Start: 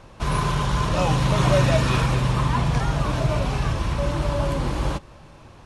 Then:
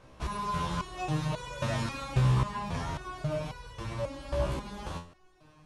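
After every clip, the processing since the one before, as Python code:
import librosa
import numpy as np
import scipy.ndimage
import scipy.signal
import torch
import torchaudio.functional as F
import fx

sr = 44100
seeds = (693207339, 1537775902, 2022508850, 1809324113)

y = fx.resonator_held(x, sr, hz=3.7, low_hz=64.0, high_hz=490.0)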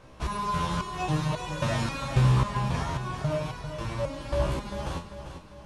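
y = fx.echo_feedback(x, sr, ms=396, feedback_pct=49, wet_db=-10)
y = y * 10.0 ** (3.5 / 20.0)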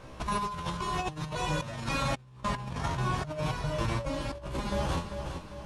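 y = fx.over_compress(x, sr, threshold_db=-32.0, ratio=-0.5)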